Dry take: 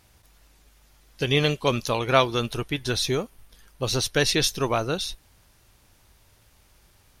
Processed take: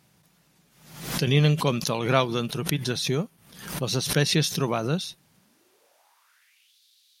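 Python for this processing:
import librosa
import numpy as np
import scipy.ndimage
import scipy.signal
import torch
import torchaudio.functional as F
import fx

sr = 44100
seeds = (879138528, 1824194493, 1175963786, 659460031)

y = fx.filter_sweep_highpass(x, sr, from_hz=160.0, to_hz=3800.0, start_s=5.34, end_s=6.77, q=4.6)
y = fx.pre_swell(y, sr, db_per_s=80.0)
y = y * 10.0 ** (-4.0 / 20.0)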